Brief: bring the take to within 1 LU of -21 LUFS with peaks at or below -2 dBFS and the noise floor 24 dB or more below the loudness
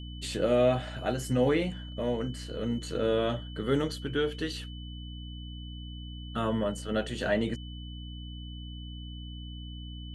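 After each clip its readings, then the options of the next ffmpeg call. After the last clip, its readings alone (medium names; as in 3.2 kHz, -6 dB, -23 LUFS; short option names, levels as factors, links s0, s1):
hum 60 Hz; highest harmonic 300 Hz; hum level -39 dBFS; steady tone 3 kHz; tone level -48 dBFS; loudness -30.5 LUFS; peak level -14.0 dBFS; loudness target -21.0 LUFS
-> -af "bandreject=f=60:t=h:w=4,bandreject=f=120:t=h:w=4,bandreject=f=180:t=h:w=4,bandreject=f=240:t=h:w=4,bandreject=f=300:t=h:w=4"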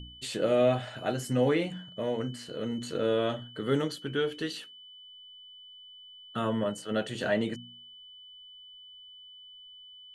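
hum not found; steady tone 3 kHz; tone level -48 dBFS
-> -af "bandreject=f=3000:w=30"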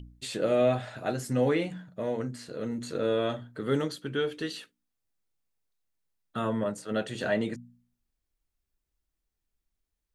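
steady tone not found; loudness -30.5 LUFS; peak level -13.5 dBFS; loudness target -21.0 LUFS
-> -af "volume=2.99"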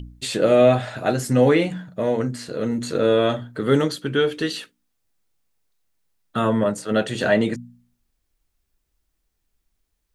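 loudness -21.0 LUFS; peak level -4.0 dBFS; noise floor -74 dBFS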